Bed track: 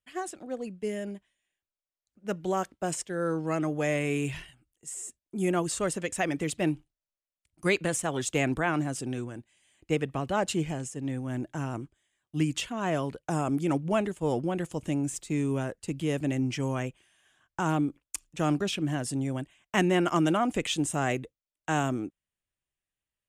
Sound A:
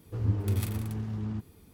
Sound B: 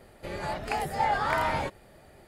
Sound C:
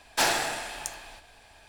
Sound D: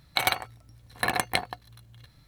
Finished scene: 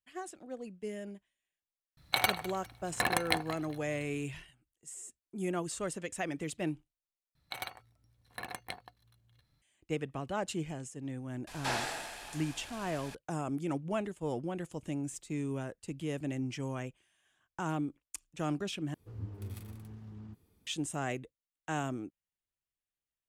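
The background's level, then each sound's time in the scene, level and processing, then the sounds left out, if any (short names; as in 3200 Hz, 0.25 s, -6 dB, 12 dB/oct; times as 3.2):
bed track -7.5 dB
1.97 add D -4 dB + feedback echo 0.203 s, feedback 31%, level -17 dB
7.35 replace with D -16 dB
11.47 add C -8.5 dB + delta modulation 64 kbps, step -34.5 dBFS
18.94 replace with A -14 dB
not used: B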